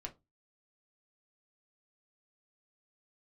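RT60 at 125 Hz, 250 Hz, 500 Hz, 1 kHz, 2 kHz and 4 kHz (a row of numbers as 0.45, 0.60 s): 0.35, 0.30, 0.20, 0.20, 0.15, 0.15 s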